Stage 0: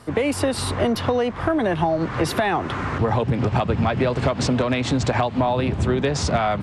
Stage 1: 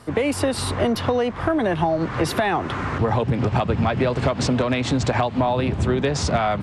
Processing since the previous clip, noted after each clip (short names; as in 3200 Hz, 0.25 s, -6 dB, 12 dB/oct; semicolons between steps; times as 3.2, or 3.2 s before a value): nothing audible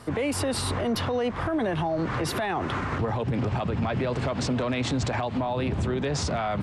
limiter -19.5 dBFS, peak gain reduction 11 dB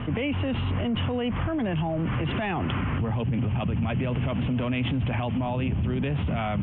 steep low-pass 3200 Hz 96 dB/oct; band shelf 810 Hz -9.5 dB 2.9 oct; fast leveller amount 70%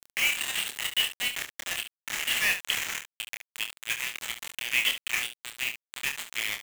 steep high-pass 1700 Hz 96 dB/oct; requantised 6-bit, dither none; on a send: early reflections 27 ms -5.5 dB, 70 ms -10.5 dB; on the sum: gain +8.5 dB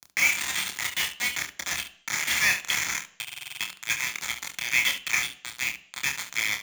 reverb RT60 0.65 s, pre-delay 3 ms, DRR 11.5 dB; stuck buffer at 3.23, samples 2048, times 7